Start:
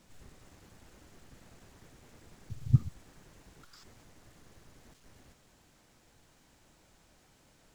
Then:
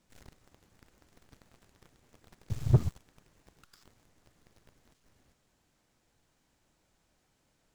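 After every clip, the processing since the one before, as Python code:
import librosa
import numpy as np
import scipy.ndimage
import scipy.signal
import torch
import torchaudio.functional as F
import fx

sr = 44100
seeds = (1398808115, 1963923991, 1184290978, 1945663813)

y = fx.leveller(x, sr, passes=3)
y = y * librosa.db_to_amplitude(-3.5)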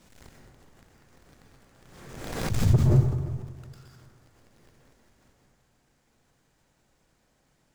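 y = fx.echo_feedback(x, sr, ms=361, feedback_pct=32, wet_db=-17.5)
y = fx.rev_plate(y, sr, seeds[0], rt60_s=1.4, hf_ratio=0.4, predelay_ms=110, drr_db=-2.5)
y = fx.pre_swell(y, sr, db_per_s=43.0)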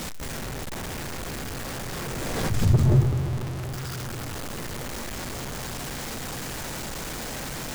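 y = x + 0.5 * 10.0 ** (-27.5 / 20.0) * np.sign(x)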